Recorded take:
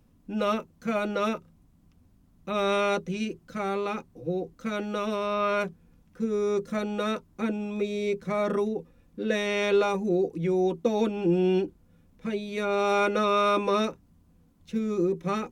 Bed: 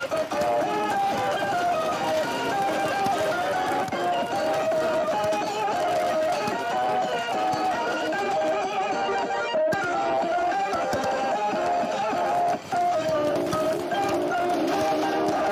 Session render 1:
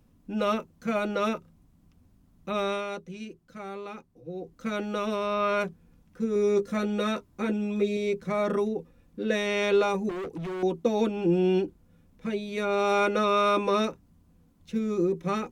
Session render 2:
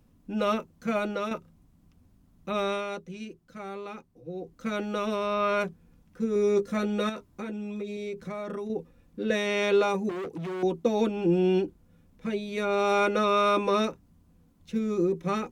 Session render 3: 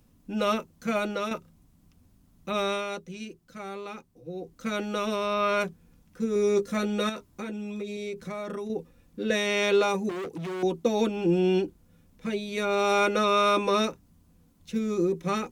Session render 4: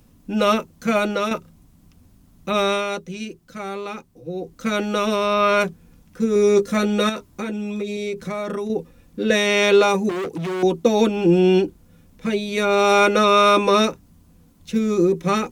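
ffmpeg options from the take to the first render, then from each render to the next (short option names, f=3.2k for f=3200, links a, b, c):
-filter_complex "[0:a]asettb=1/sr,asplit=3[a][b][c];[a]atrim=end=6.344[d];[b]atrim=start=6.34:end=7.97,asetpts=PTS-STARTPTS,afade=t=in:d=0.004:c=qsin,afade=t=out:st=1.626:d=0.004:c=qsin,asplit=2[e][f];[f]adelay=15,volume=-5dB[g];[e][g]amix=inputs=2:normalize=0,atrim=end_sample=71883[h];[c]atrim=start=7.966[i];[d][h]acrossfade=d=0.004:c1=hsin:c2=qsin[j];[j][i]acrossfade=d=0.004:c1=qsin:c2=hsin,asettb=1/sr,asplit=3[k][l][m];[k]atrim=end=10.094[n];[l]atrim=start=10.09:end=10.63,asetpts=PTS-STARTPTS,afade=t=in:d=0.004:c=qsin,afade=t=out:st=0.536:d=0.004:c=qsin,asoftclip=type=hard:threshold=-32dB[o];[m]atrim=start=10.626[p];[n][o]acrossfade=d=0.004:c1=hsin:c2=qsin[q];[q][p]acrossfade=d=0.004:c1=qsin:c2=hsin,asplit=3[r][s][t];[r]atrim=end=2.85,asetpts=PTS-STARTPTS,afade=t=out:st=2.51:d=0.34:silence=0.354813[u];[s]atrim=start=2.85:end=4.32,asetpts=PTS-STARTPTS,volume=-9dB[v];[t]atrim=start=4.32,asetpts=PTS-STARTPTS,afade=t=in:d=0.34:silence=0.354813[w];[u][v][w]concat=n=3:v=0:a=1"
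-filter_complex "[0:a]asettb=1/sr,asplit=3[a][b][c];[a]atrim=end=7.094[d];[b]atrim=start=7.09:end=8.7,asetpts=PTS-STARTPTS,afade=t=in:d=0.004:c=qsin,afade=t=out:st=1.606:d=0.004:c=qsin,acompressor=threshold=-32dB:ratio=5:attack=3.2:release=140:knee=1:detection=peak[e];[c]atrim=start=8.696[f];[d][e]acrossfade=d=0.004:c1=hsin:c2=qsin[g];[g][f]acrossfade=d=0.004:c1=qsin:c2=hsin,asettb=1/sr,asplit=3[h][i][j];[h]atrim=end=9.304[k];[i]atrim=start=9.3:end=10.64,asetpts=PTS-STARTPTS,afade=t=in:d=0.004:c=qsin,afade=t=out:st=1.336:d=0.004:c=qsin,highpass=85[l];[j]atrim=start=10.636[m];[k][l]acrossfade=d=0.004:c1=hsin:c2=qsin[n];[n][m]acrossfade=d=0.004:c1=qsin:c2=hsin,asplit=2[o][p];[o]atrim=end=1.31,asetpts=PTS-STARTPTS,afade=t=out:st=0.9:d=0.41:c=qsin:silence=0.421697[q];[p]atrim=start=1.31,asetpts=PTS-STARTPTS,afade=t=in:d=0.004:c=hsin:silence=0.421697[r];[q][r]concat=n=2:v=0:a=1"
-af "highshelf=f=3.1k:g=7"
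-af "volume=8dB"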